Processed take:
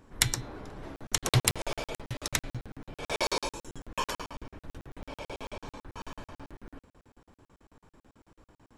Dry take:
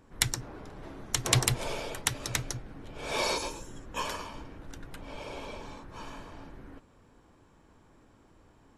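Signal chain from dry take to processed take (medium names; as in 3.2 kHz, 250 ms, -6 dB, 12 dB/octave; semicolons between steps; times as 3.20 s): de-hum 166.5 Hz, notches 25; crackling interface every 0.11 s, samples 2048, zero, from 0.96 s; trim +2 dB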